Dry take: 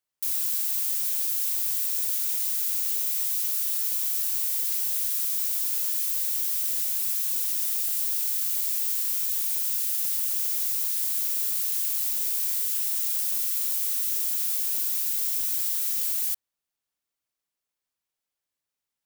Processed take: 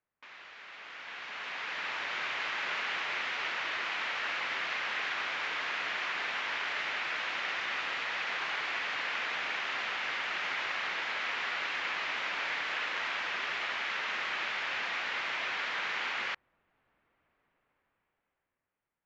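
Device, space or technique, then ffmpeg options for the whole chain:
action camera in a waterproof case: -af "lowpass=frequency=2200:width=0.5412,lowpass=frequency=2200:width=1.3066,dynaudnorm=framelen=270:gausssize=11:maxgain=16dB,volume=5dB" -ar 16000 -c:a aac -b:a 64k

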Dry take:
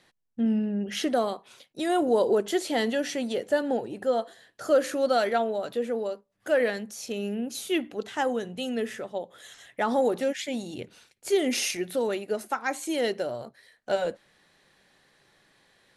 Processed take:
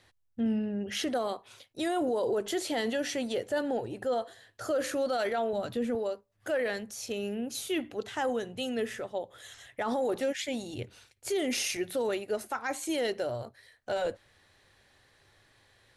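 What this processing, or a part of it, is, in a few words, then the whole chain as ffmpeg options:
car stereo with a boomy subwoofer: -filter_complex "[0:a]asettb=1/sr,asplit=3[link_01][link_02][link_03];[link_01]atrim=end=5.534[link_04];[link_02]atrim=start=5.53:end=5.95,asetpts=PTS-STARTPTS,afade=type=in:duration=0.004:curve=qsin,afade=type=out:start_time=0.416:duration=0.004:curve=qsin,lowshelf=frequency=300:width_type=q:width=1.5:gain=7[link_05];[link_03]atrim=start=5.946[link_06];[link_04][link_05]acrossfade=duration=0.004:curve1=hsin:curve2=qsin[link_07];[link_07][link_06]acrossfade=duration=0.004:curve1=qsin:curve2=hsin,lowshelf=frequency=130:width_type=q:width=3:gain=7,alimiter=limit=-21.5dB:level=0:latency=1:release=11,volume=-1dB"

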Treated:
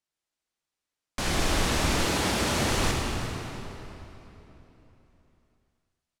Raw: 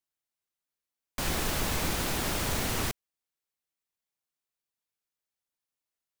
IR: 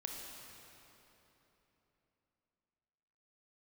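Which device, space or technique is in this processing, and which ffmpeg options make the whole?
cave: -filter_complex "[0:a]aecho=1:1:348:0.158[link_01];[1:a]atrim=start_sample=2205[link_02];[link_01][link_02]afir=irnorm=-1:irlink=0,lowpass=8700,asettb=1/sr,asplit=3[link_03][link_04][link_05];[link_03]atrim=end=2.064[link_06];[link_04]atrim=start=2.06:end=2.71,asetpts=PTS-STARTPTS,afade=type=in:duration=0.004:curve=qsin,afade=type=out:start_time=0.646:duration=0.004:curve=qsin,highpass=68[link_07];[link_05]atrim=start=2.706[link_08];[link_06][link_07]acrossfade=duration=0.004:curve1=hsin:curve2=qsin[link_09];[link_09][link_08]acrossfade=duration=0.004:curve1=qsin:curve2=hsin,volume=6.5dB"

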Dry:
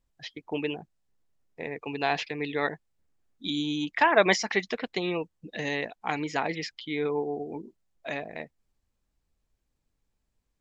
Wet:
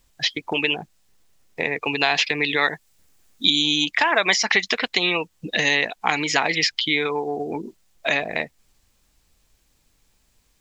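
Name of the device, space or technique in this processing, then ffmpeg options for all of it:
mastering chain: -filter_complex "[0:a]equalizer=frequency=1600:width_type=o:width=0.77:gain=-1.5,acrossover=split=810|5900[link_01][link_02][link_03];[link_01]acompressor=threshold=-35dB:ratio=4[link_04];[link_02]acompressor=threshold=-30dB:ratio=4[link_05];[link_03]acompressor=threshold=-49dB:ratio=4[link_06];[link_04][link_05][link_06]amix=inputs=3:normalize=0,acompressor=threshold=-41dB:ratio=1.5,tiltshelf=frequency=1200:gain=-5,alimiter=level_in=19dB:limit=-1dB:release=50:level=0:latency=1,asettb=1/sr,asplit=3[link_07][link_08][link_09];[link_07]atrim=end=2.614[link_10];[link_08]atrim=start=2.61:end=3.5,asetpts=PTS-STARTPTS,afade=type=in:duration=0.004:curve=qsin,afade=type=out:start_time=0.886:duration=0.004:curve=qsin,highshelf=frequency=5200:gain=6[link_11];[link_09]atrim=start=3.496[link_12];[link_10][link_11]acrossfade=duration=0.004:curve1=hsin:curve2=qsin[link_13];[link_13][link_12]acrossfade=duration=0.004:curve1=qsin:curve2=hsin,volume=-2dB"

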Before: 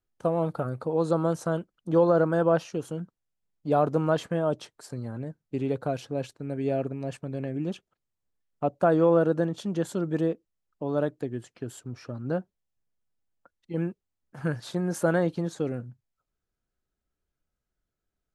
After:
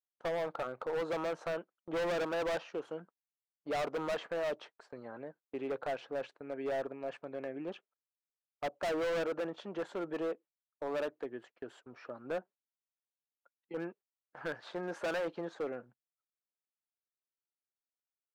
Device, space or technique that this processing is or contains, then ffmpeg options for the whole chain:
walkie-talkie: -af "highpass=530,lowpass=2300,asoftclip=type=hard:threshold=-31.5dB,agate=range=-17dB:threshold=-56dB:ratio=16:detection=peak"

